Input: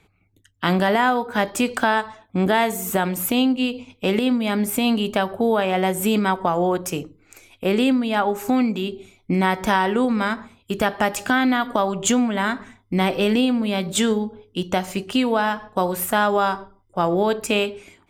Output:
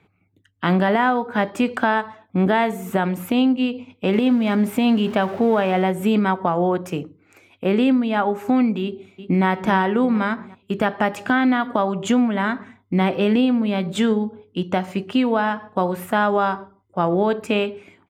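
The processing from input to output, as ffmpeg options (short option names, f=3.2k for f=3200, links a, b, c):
-filter_complex "[0:a]asettb=1/sr,asplit=3[a][b][c];[a]atrim=end=4.134[d];[b]atrim=start=4.13:end=5.83,asetpts=PTS-STARTPTS,afade=t=in:d=0.004:c=qsin,afade=t=out:st=1.696:d=0.004:c=qsin,aeval=exprs='val(0)+0.5*0.0316*sgn(val(0))':c=same[e];[c]atrim=start=5.826[f];[d][e]acrossfade=d=0.004:c1=hsin:c2=qsin[g];[g][f]acrossfade=d=0.004:c1=qsin:c2=hsin,asplit=2[h][i];[i]afade=t=in:st=8.82:d=0.01,afade=t=out:st=9.46:d=0.01,aecho=0:1:360|720|1080|1440|1800:0.251189|0.113035|0.0508657|0.0228896|0.0103003[j];[h][j]amix=inputs=2:normalize=0,highpass=120,bass=f=250:g=4,treble=f=4k:g=-14"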